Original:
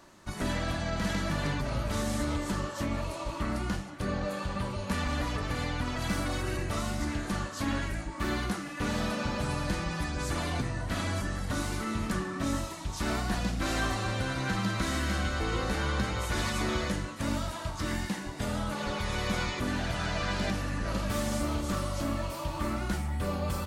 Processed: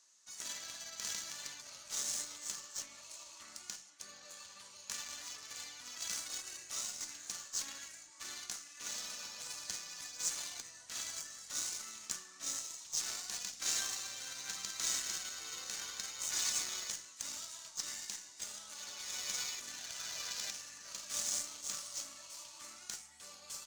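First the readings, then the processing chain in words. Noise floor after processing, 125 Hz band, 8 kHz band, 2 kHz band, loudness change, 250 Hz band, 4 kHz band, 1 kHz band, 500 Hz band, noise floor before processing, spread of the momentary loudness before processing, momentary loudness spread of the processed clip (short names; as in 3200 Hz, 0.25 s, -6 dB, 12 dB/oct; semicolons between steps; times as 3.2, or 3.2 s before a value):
-56 dBFS, -36.0 dB, +5.5 dB, -13.5 dB, -7.5 dB, -31.0 dB, -3.0 dB, -19.0 dB, -24.5 dB, -40 dBFS, 4 LU, 12 LU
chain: band-pass 6500 Hz, Q 3; added harmonics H 3 -26 dB, 4 -28 dB, 7 -22 dB, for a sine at -32 dBFS; gain +12.5 dB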